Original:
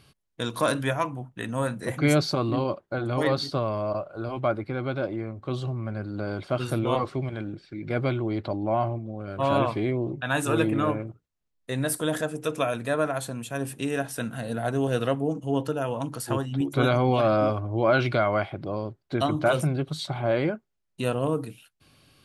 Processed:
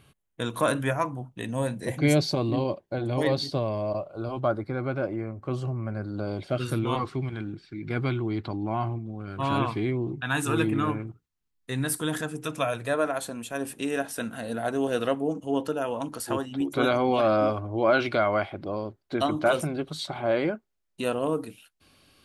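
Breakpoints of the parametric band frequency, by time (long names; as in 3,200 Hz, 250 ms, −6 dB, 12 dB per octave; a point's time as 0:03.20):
parametric band −13.5 dB 0.41 octaves
0:00.79 4,900 Hz
0:01.47 1,300 Hz
0:03.92 1,300 Hz
0:04.96 3,700 Hz
0:05.90 3,700 Hz
0:06.81 580 Hz
0:12.43 580 Hz
0:13.08 130 Hz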